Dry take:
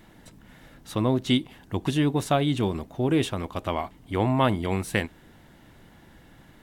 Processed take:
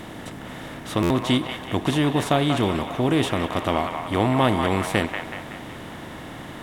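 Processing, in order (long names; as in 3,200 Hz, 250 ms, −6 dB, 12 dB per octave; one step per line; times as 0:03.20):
compressor on every frequency bin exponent 0.6
delay with a band-pass on its return 187 ms, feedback 53%, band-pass 1,400 Hz, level −4 dB
buffer that repeats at 0:01.02, samples 512, times 6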